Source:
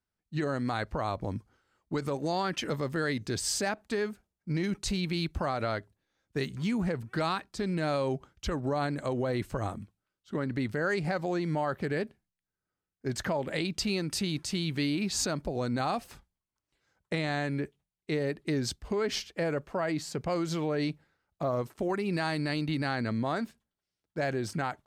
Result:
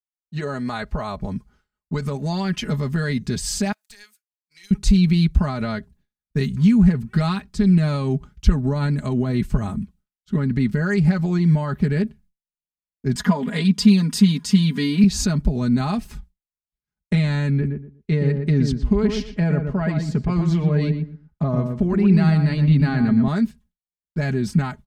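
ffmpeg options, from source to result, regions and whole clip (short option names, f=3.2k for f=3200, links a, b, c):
-filter_complex "[0:a]asettb=1/sr,asplit=3[a][b][c];[a]atrim=end=3.724[d];[b]atrim=start=3.72:end=4.71,asetpts=PTS-STARTPTS,afade=t=in:d=0.004:c=qsin,afade=t=out:st=0.986:d=0.004:c=qsin,highpass=f=1.5k:p=1,aderivative,aeval=exprs='clip(val(0),-1,0.00631)':c=same[e];[c]atrim=start=4.706[f];[d][e]acrossfade=d=0.004:c1=hsin:c2=qsin[g];[g][f]acrossfade=d=0.004:c1=qsin:c2=hsin,asettb=1/sr,asplit=3[h][i][j];[h]atrim=end=13.154[k];[i]atrim=start=13.15:end=15.04,asetpts=PTS-STARTPTS,afade=t=in:d=0.004:c=qsin,afade=t=out:st=1.886:d=0.004:c=qsin,highpass=170,equalizer=f=1k:w=4.9:g=9,aecho=1:1:4.2:0.86,atrim=end_sample=83349[l];[j]atrim=start=15.036[m];[k][l]acrossfade=d=0.004:c1=hsin:c2=qsin[n];[n][m]acrossfade=d=0.004:c1=qsin:c2=hsin,asettb=1/sr,asplit=3[o][p][q];[o]atrim=end=17.504[r];[p]atrim=start=17.5:end=23.28,asetpts=PTS-STARTPTS,afade=t=in:d=0.004:c=qsin,afade=t=out:st=5.776:d=0.004:c=qsin,aemphasis=mode=reproduction:type=50fm,asplit=2[s][t];[t]adelay=119,lowpass=f=1.2k:p=1,volume=-4.5dB,asplit=2[u][v];[v]adelay=119,lowpass=f=1.2k:p=1,volume=0.23,asplit=2[w][x];[x]adelay=119,lowpass=f=1.2k:p=1,volume=0.23[y];[s][u][w][y]amix=inputs=4:normalize=0,atrim=end_sample=254898[z];[q]atrim=start=23.276[aa];[r][z]acrossfade=d=0.004:c1=hsin:c2=qsin[ab];[ab][aa]acrossfade=d=0.004:c1=qsin:c2=hsin,agate=range=-33dB:threshold=-59dB:ratio=3:detection=peak,aecho=1:1:4.8:0.76,asubboost=boost=8:cutoff=180,volume=2.5dB"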